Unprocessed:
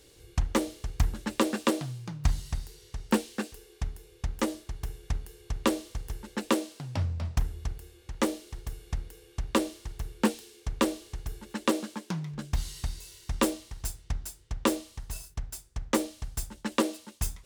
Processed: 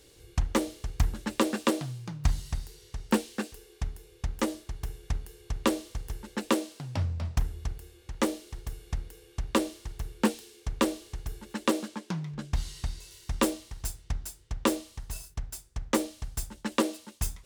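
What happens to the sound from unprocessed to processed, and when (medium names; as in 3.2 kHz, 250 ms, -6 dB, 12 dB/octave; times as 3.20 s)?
11.88–13.11 s: treble shelf 11 kHz -10.5 dB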